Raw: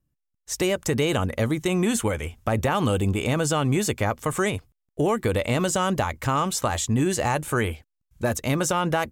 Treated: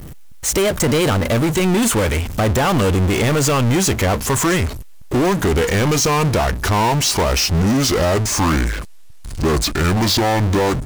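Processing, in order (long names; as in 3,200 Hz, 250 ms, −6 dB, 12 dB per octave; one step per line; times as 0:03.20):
gliding playback speed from 109% → 59%
power curve on the samples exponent 0.35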